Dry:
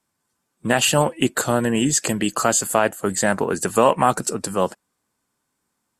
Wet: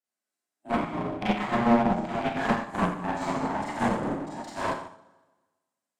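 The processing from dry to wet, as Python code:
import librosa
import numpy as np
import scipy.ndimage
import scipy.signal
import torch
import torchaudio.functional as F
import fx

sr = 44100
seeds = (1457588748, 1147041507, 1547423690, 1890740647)

y = x * np.sin(2.0 * np.pi * 470.0 * np.arange(len(x)) / sr)
y = fx.env_lowpass_down(y, sr, base_hz=360.0, full_db=-16.5)
y = scipy.signal.sosfilt(scipy.signal.butter(4, 160.0, 'highpass', fs=sr, output='sos'), y)
y = fx.high_shelf(y, sr, hz=2800.0, db=10.5)
y = fx.rev_schroeder(y, sr, rt60_s=1.3, comb_ms=30, drr_db=-9.0)
y = fx.clip_asym(y, sr, top_db=-22.5, bottom_db=-8.5)
y = fx.high_shelf(y, sr, hz=5700.0, db=-8.5)
y = fx.upward_expand(y, sr, threshold_db=-30.0, expansion=2.5)
y = y * 10.0 ** (-1.0 / 20.0)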